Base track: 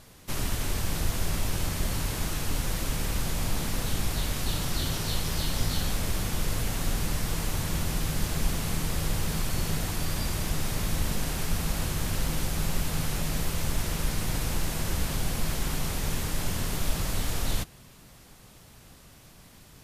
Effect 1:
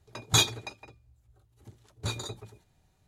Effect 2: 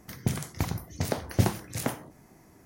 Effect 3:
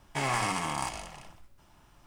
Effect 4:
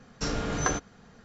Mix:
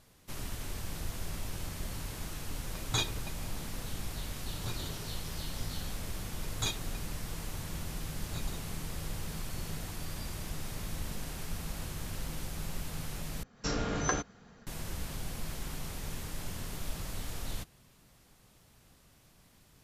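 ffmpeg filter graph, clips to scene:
-filter_complex "[1:a]asplit=2[s0][s1];[0:a]volume=0.316[s2];[s0]highshelf=f=7600:g=-9.5[s3];[4:a]dynaudnorm=f=100:g=3:m=2[s4];[s2]asplit=2[s5][s6];[s5]atrim=end=13.434[s7];[s4]atrim=end=1.24,asetpts=PTS-STARTPTS,volume=0.376[s8];[s6]atrim=start=14.666[s9];[s3]atrim=end=3.07,asetpts=PTS-STARTPTS,volume=0.422,afade=t=in:d=0.004:c=hsin,afade=t=out:st=3.066:d=0.004:c=hsin,adelay=2600[s10];[s1]atrim=end=3.07,asetpts=PTS-STARTPTS,volume=0.251,afade=t=in:d=0.004:c=hsin,afade=t=out:st=3.066:d=0.004:c=hsin,adelay=6280[s11];[s7][s8]acrossfade=d=0.004:c1=hsin:c2=hsin[s12];[s12][s9]acrossfade=d=0.004:c1=hsin:c2=hsin[s13];[s13][s10][s11]amix=inputs=3:normalize=0"

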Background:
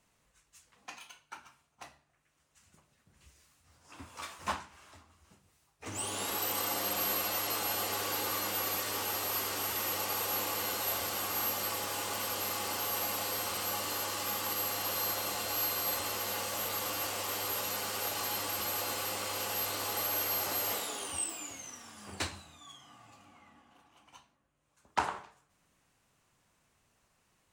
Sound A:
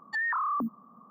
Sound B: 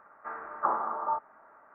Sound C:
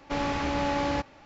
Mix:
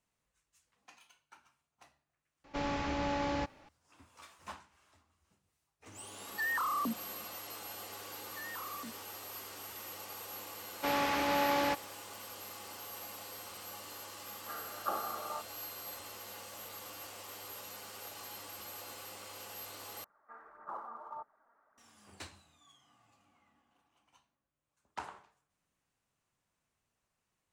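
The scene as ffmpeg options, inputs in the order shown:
-filter_complex "[3:a]asplit=2[s0][s1];[1:a]asplit=2[s2][s3];[2:a]asplit=2[s4][s5];[0:a]volume=0.251[s6];[s1]highpass=f=510:p=1[s7];[s4]asuperstop=centerf=970:order=4:qfactor=3.4[s8];[s5]aphaser=in_gain=1:out_gain=1:delay=4.3:decay=0.45:speed=1.7:type=sinusoidal[s9];[s6]asplit=2[s10][s11];[s10]atrim=end=20.044[s12];[s9]atrim=end=1.74,asetpts=PTS-STARTPTS,volume=0.168[s13];[s11]atrim=start=21.776[s14];[s0]atrim=end=1.25,asetpts=PTS-STARTPTS,volume=0.473,afade=t=in:d=0.004:c=hsin,afade=t=out:st=1.246:d=0.004:c=hsin,adelay=2440[s15];[s2]atrim=end=1.1,asetpts=PTS-STARTPTS,volume=0.596,afade=t=in:d=0.004:c=hsin,afade=t=out:st=1.096:d=0.004:c=hsin,adelay=6250[s16];[s3]atrim=end=1.1,asetpts=PTS-STARTPTS,volume=0.15,afade=t=in:d=0.004:c=hsin,afade=t=out:st=1.096:d=0.004:c=hsin,adelay=8230[s17];[s7]atrim=end=1.25,asetpts=PTS-STARTPTS,afade=t=in:d=0.004:c=hsin,afade=t=out:st=1.246:d=0.004:c=hsin,adelay=10730[s18];[s8]atrim=end=1.74,asetpts=PTS-STARTPTS,volume=0.531,afade=t=in:d=0.004:c=hsin,afade=t=out:st=1.736:d=0.004:c=hsin,adelay=14230[s19];[s12][s13]acrossfade=d=0.004:c1=hsin:c2=hsin[s20];[s20][s14]acrossfade=d=0.004:c1=hsin:c2=hsin[s21];[s21][s15][s16][s17][s18][s19]amix=inputs=6:normalize=0"

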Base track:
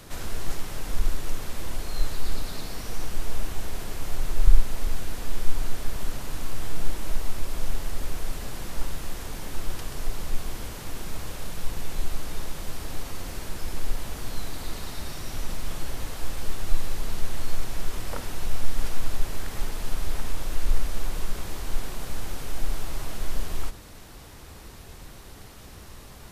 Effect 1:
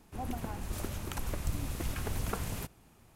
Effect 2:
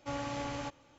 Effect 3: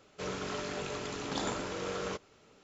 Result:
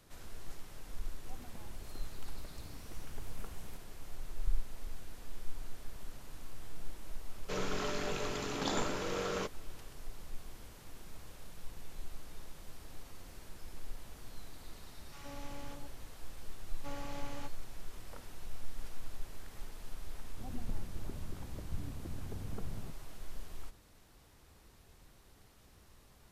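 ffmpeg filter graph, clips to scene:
-filter_complex "[1:a]asplit=2[s0][s1];[2:a]asplit=2[s2][s3];[0:a]volume=0.15[s4];[s2]acrossover=split=930[s5][s6];[s5]adelay=120[s7];[s7][s6]amix=inputs=2:normalize=0[s8];[s1]bandpass=f=150:t=q:w=0.5:csg=0[s9];[s0]atrim=end=3.15,asetpts=PTS-STARTPTS,volume=0.158,afade=t=in:d=0.004:c=hsin,afade=t=out:st=3.146:d=0.004:c=hsin,adelay=1110[s10];[3:a]atrim=end=2.63,asetpts=PTS-STARTPTS,afade=t=in:d=0.004:c=hsin,afade=t=out:st=2.626:d=0.004:c=hsin,adelay=321930S[s11];[s8]atrim=end=0.98,asetpts=PTS-STARTPTS,volume=0.266,afade=t=in:d=0.004:c=hsin,afade=t=out:st=0.976:d=0.004:c=hsin,adelay=15060[s12];[s3]atrim=end=0.98,asetpts=PTS-STARTPTS,volume=0.398,afade=t=in:d=0.004:c=hsin,afade=t=out:st=0.976:d=0.004:c=hsin,adelay=16780[s13];[s9]atrim=end=3.15,asetpts=PTS-STARTPTS,volume=0.531,afade=t=in:d=0.004:c=hsin,afade=t=out:st=3.146:d=0.004:c=hsin,adelay=20250[s14];[s4][s10][s11][s12][s13][s14]amix=inputs=6:normalize=0"

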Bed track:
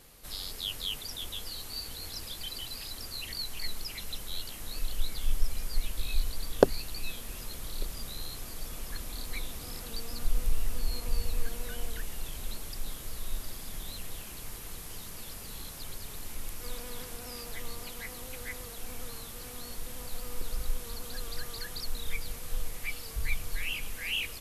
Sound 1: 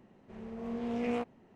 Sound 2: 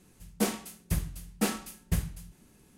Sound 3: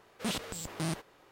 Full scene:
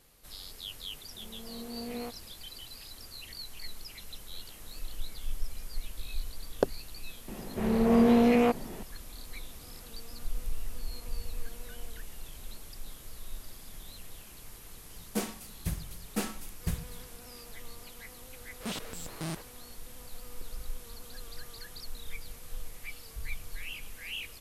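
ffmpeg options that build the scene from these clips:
-filter_complex "[1:a]asplit=2[s0][s1];[3:a]asplit=2[s2][s3];[0:a]volume=0.473[s4];[s0]acrusher=bits=10:mix=0:aa=0.000001[s5];[s2]acompressor=threshold=0.01:ratio=6:attack=3.2:release=140:knee=1:detection=peak[s6];[s1]alimiter=level_in=31.6:limit=0.891:release=50:level=0:latency=1[s7];[s5]atrim=end=1.55,asetpts=PTS-STARTPTS,volume=0.501,afade=t=in:d=0.004:c=hsin,afade=t=out:st=1.546:d=0.004:c=hsin,adelay=870[s8];[s6]atrim=end=1.31,asetpts=PTS-STARTPTS,volume=0.133,afade=t=in:d=0.004:c=hsin,afade=t=out:st=1.306:d=0.004:c=hsin,adelay=4140[s9];[s7]atrim=end=1.55,asetpts=PTS-STARTPTS,volume=0.237,afade=t=in:d=0.004:c=hsin,afade=t=out:st=1.546:d=0.004:c=hsin,adelay=7280[s10];[2:a]atrim=end=2.77,asetpts=PTS-STARTPTS,volume=0.596,afade=t=in:d=0.004:c=hsin,afade=t=out:st=2.766:d=0.004:c=hsin,adelay=14750[s11];[s3]atrim=end=1.31,asetpts=PTS-STARTPTS,volume=0.708,afade=t=in:d=0.004:c=hsin,afade=t=out:st=1.306:d=0.004:c=hsin,adelay=18410[s12];[s4][s8][s9][s10][s11][s12]amix=inputs=6:normalize=0"

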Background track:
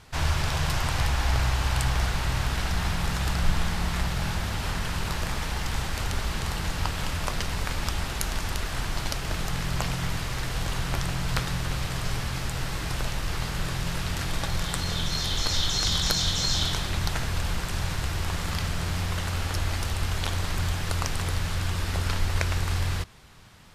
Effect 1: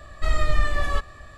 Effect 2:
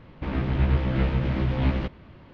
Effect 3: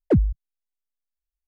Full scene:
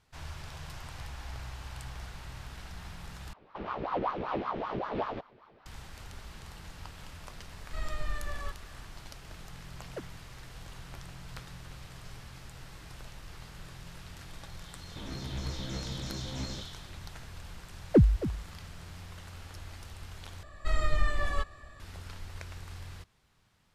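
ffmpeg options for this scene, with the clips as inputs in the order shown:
-filter_complex "[2:a]asplit=2[s0][s1];[1:a]asplit=2[s2][s3];[3:a]asplit=2[s4][s5];[0:a]volume=0.133[s6];[s0]aeval=exprs='val(0)*sin(2*PI*710*n/s+710*0.65/5.2*sin(2*PI*5.2*n/s))':c=same[s7];[s4]highpass=850[s8];[s1]highpass=66[s9];[s5]aecho=1:1:271:0.211[s10];[s6]asplit=3[s11][s12][s13];[s11]atrim=end=3.334[s14];[s7]atrim=end=2.33,asetpts=PTS-STARTPTS,volume=0.398[s15];[s12]atrim=start=5.656:end=20.434[s16];[s3]atrim=end=1.37,asetpts=PTS-STARTPTS,volume=0.473[s17];[s13]atrim=start=21.796[s18];[s2]atrim=end=1.37,asetpts=PTS-STARTPTS,volume=0.2,afade=t=in:d=0.004:c=hsin,afade=t=out:st=1.366:d=0.004:c=hsin,adelay=7510[s19];[s8]atrim=end=1.47,asetpts=PTS-STARTPTS,volume=0.376,afade=t=in:d=0.004:c=hsin,afade=t=out:st=1.466:d=0.004:c=hsin,adelay=434826S[s20];[s9]atrim=end=2.33,asetpts=PTS-STARTPTS,volume=0.211,afade=t=in:d=0.004:c=hsin,afade=t=out:st=2.326:d=0.004:c=hsin,adelay=14740[s21];[s10]atrim=end=1.47,asetpts=PTS-STARTPTS,volume=0.794,afade=t=in:d=0.004:c=hsin,afade=t=out:st=1.466:d=0.004:c=hsin,adelay=17840[s22];[s14][s15]acrossfade=d=0.004:c1=hsin:c2=hsin[s23];[s23][s16]acrossfade=d=0.004:c1=hsin:c2=hsin[s24];[s24][s17]acrossfade=d=0.004:c1=hsin:c2=hsin[s25];[s25][s18]acrossfade=d=0.004:c1=hsin:c2=hsin[s26];[s26][s19][s20][s21][s22]amix=inputs=5:normalize=0"

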